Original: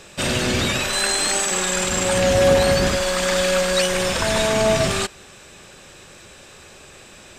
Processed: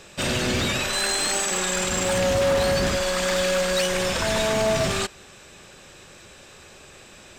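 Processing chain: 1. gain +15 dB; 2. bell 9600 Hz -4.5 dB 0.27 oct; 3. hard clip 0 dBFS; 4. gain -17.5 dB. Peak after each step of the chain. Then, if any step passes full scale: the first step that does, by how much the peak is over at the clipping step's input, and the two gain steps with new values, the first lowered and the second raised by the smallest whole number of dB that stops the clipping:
+10.0, +10.0, 0.0, -17.5 dBFS; step 1, 10.0 dB; step 1 +5 dB, step 4 -7.5 dB

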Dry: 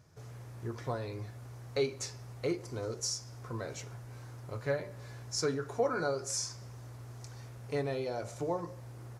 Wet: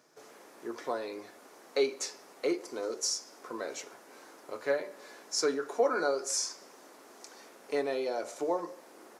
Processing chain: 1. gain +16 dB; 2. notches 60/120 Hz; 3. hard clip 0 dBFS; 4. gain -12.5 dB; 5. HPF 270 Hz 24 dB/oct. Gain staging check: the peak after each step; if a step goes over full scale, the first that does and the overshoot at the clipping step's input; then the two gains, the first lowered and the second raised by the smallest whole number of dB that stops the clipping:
-2.0, -2.0, -2.0, -14.5, -15.5 dBFS; no overload

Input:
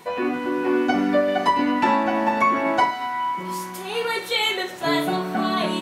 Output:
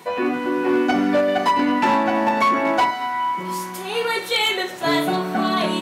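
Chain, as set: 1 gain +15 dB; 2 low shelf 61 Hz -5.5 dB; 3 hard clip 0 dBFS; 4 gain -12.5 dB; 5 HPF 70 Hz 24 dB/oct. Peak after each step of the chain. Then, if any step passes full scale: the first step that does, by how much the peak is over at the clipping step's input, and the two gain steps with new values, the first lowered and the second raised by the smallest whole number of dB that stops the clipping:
+9.5, +9.5, 0.0, -12.5, -9.0 dBFS; step 1, 9.5 dB; step 1 +5 dB, step 4 -2.5 dB

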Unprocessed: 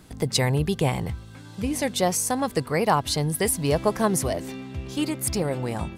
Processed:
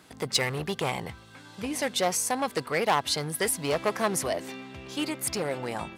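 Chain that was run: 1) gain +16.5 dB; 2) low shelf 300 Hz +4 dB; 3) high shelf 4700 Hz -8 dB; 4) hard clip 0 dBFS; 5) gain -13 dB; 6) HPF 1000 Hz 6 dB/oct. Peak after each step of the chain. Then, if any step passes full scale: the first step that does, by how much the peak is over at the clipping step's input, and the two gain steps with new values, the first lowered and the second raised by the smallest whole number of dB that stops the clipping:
+8.5, +9.5, +9.0, 0.0, -13.0, -10.5 dBFS; step 1, 9.0 dB; step 1 +7.5 dB, step 5 -4 dB

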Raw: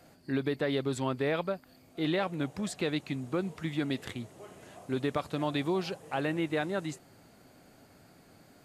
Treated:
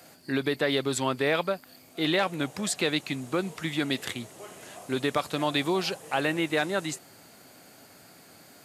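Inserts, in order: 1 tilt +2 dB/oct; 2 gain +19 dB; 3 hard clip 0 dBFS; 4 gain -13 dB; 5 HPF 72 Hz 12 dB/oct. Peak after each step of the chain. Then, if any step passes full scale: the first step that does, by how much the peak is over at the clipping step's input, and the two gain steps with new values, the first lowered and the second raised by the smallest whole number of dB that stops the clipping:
-16.0, +3.0, 0.0, -13.0, -12.5 dBFS; step 2, 3.0 dB; step 2 +16 dB, step 4 -10 dB

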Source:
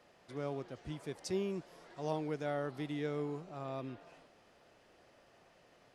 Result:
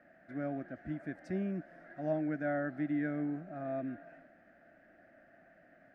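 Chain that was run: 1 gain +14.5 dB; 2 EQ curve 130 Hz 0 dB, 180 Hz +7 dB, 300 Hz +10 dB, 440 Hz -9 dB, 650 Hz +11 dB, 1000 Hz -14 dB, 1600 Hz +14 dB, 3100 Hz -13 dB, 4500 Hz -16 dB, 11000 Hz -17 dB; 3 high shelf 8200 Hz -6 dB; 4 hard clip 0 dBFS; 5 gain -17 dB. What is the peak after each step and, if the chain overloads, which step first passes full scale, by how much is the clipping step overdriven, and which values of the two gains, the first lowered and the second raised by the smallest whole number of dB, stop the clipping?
-8.0, -5.5, -5.5, -5.5, -22.5 dBFS; no overload

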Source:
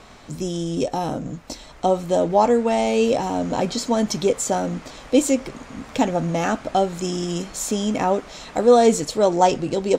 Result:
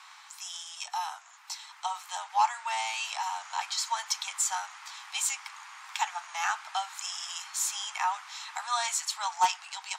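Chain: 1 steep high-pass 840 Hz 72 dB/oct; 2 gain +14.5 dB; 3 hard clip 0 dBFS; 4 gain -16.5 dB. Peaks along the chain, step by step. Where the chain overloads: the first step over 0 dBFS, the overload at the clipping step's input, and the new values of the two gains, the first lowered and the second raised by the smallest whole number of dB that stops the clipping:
-9.5, +5.0, 0.0, -16.5 dBFS; step 2, 5.0 dB; step 2 +9.5 dB, step 4 -11.5 dB

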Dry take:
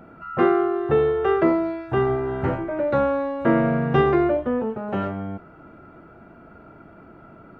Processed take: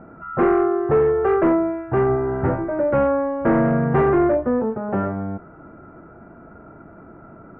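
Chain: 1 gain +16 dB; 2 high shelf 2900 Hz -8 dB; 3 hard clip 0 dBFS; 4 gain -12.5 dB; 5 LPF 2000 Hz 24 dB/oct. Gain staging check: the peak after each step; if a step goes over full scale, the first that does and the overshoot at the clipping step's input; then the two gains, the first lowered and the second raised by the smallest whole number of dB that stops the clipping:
+10.5, +10.0, 0.0, -12.5, -11.0 dBFS; step 1, 10.0 dB; step 1 +6 dB, step 4 -2.5 dB

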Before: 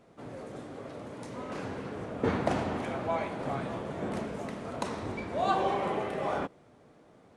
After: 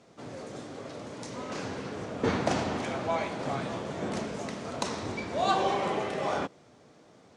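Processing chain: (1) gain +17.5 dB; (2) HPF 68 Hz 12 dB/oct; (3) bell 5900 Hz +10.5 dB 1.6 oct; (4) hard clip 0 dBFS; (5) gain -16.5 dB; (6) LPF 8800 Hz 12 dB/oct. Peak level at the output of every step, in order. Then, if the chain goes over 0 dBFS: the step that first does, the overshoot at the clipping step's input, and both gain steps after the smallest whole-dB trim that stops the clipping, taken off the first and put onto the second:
+3.5, +3.5, +4.0, 0.0, -16.5, -16.0 dBFS; step 1, 4.0 dB; step 1 +13.5 dB, step 5 -12.5 dB

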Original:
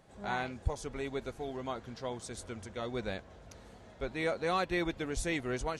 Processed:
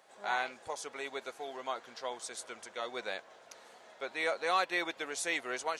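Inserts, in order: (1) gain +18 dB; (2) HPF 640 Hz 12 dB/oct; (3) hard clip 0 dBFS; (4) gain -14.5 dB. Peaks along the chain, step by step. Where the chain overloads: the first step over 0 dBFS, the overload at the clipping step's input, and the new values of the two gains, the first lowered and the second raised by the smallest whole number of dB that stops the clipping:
-1.0, -2.0, -2.0, -16.5 dBFS; no overload

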